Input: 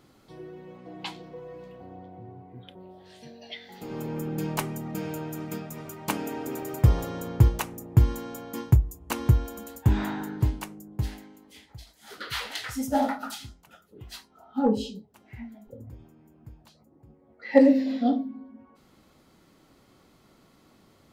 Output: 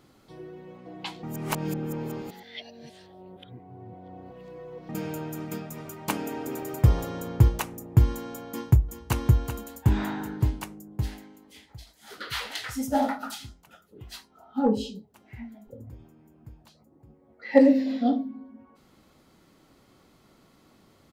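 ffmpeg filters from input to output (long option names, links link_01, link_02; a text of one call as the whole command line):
ffmpeg -i in.wav -filter_complex "[0:a]asplit=2[link_01][link_02];[link_02]afade=type=in:start_time=8.5:duration=0.01,afade=type=out:start_time=9.23:duration=0.01,aecho=0:1:380|760|1140|1520|1900:0.298538|0.134342|0.060454|0.0272043|0.0122419[link_03];[link_01][link_03]amix=inputs=2:normalize=0,asplit=3[link_04][link_05][link_06];[link_04]atrim=end=1.232[link_07];[link_05]atrim=start=1.228:end=4.892,asetpts=PTS-STARTPTS,areverse[link_08];[link_06]atrim=start=4.888[link_09];[link_07][link_08]acrossfade=duration=0.004:curve1=hsin:curve2=hsin[link_10];[link_10][link_09]acrossfade=duration=0.004:curve1=hsin:curve2=hsin" out.wav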